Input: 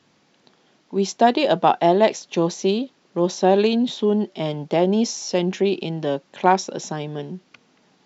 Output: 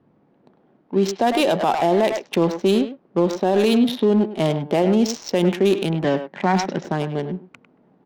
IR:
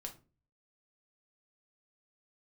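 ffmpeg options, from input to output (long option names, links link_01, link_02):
-filter_complex "[0:a]adynamicsmooth=sensitivity=5:basefreq=740,asettb=1/sr,asplit=3[link_01][link_02][link_03];[link_01]atrim=end=6.044[link_04];[link_02]atrim=start=6.04:end=6.85,asetpts=PTS-STARTPTS,afade=type=in:duration=0.004:curve=qsin,afade=type=out:start_time=0.806:duration=0.004:curve=qsin,highpass=130,equalizer=frequency=180:width_type=q:width=4:gain=10,equalizer=frequency=480:width_type=q:width=4:gain=-7,equalizer=frequency=1900:width_type=q:width=4:gain=9,lowpass=frequency=6800:width=0.5412,lowpass=frequency=6800:width=1.3066[link_05];[link_03]atrim=start=6.846[link_06];[link_04][link_05]acrossfade=duration=0.004:curve1=hsin:curve2=qsin[link_07];[link_07][link_06]acrossfade=duration=0.004:curve1=qsin:curve2=hsin,asplit=2[link_08][link_09];[link_09]adelay=100,highpass=300,lowpass=3400,asoftclip=type=hard:threshold=-15.5dB,volume=-10dB[link_10];[link_08][link_10]amix=inputs=2:normalize=0,alimiter=level_in=13.5dB:limit=-1dB:release=50:level=0:latency=1,volume=-8.5dB"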